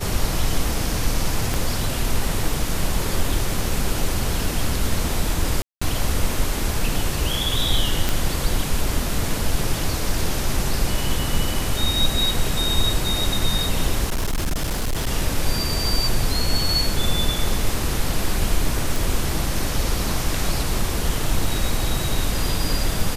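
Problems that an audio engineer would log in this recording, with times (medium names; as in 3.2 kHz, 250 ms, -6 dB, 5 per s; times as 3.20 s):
1.54 s: pop
5.62–5.82 s: dropout 195 ms
8.09 s: pop
14.06–15.07 s: clipped -18.5 dBFS
18.96 s: pop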